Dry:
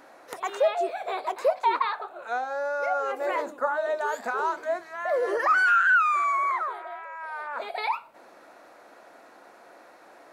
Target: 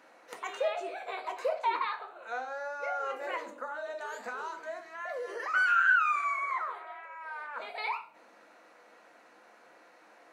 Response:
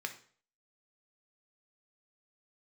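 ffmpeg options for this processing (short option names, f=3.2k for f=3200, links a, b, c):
-filter_complex "[1:a]atrim=start_sample=2205,asetrate=52920,aresample=44100[a];[0:a][a]afir=irnorm=-1:irlink=0,asettb=1/sr,asplit=3[b][c][d];[b]atrim=end=3.364[e];[c]atrim=start=3.36:end=5.54,asetpts=PTS-STARTPTS,afade=t=in:d=0.004:c=qsin,afade=t=out:st=2.176:d=0.004:c=qsin,acrossover=split=160|3000[f][g][h];[g]acompressor=threshold=-32dB:ratio=6[i];[f][i][h]amix=inputs=3:normalize=0[j];[d]atrim=start=5.536[k];[e][j]acrossfade=d=0.004:c1=hsin:c2=qsin[l];[l][k]acrossfade=d=0.004:c1=qsin:c2=hsin,volume=-3.5dB"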